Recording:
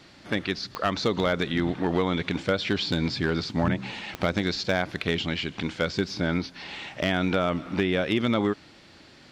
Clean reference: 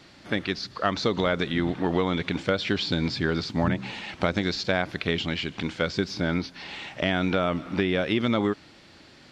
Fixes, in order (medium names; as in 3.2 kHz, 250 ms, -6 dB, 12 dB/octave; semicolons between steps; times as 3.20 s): clip repair -15 dBFS; de-click